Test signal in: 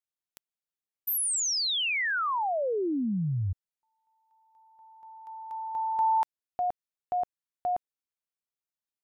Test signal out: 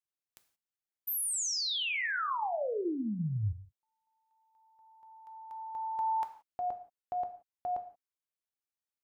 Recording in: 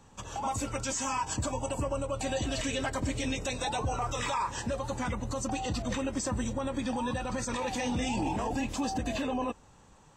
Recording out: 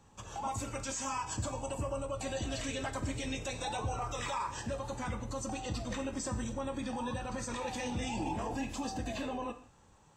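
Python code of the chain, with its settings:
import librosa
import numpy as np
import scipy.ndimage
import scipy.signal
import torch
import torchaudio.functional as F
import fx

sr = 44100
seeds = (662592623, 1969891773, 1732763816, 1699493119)

y = fx.rev_gated(x, sr, seeds[0], gate_ms=200, shape='falling', drr_db=7.0)
y = y * 10.0 ** (-5.5 / 20.0)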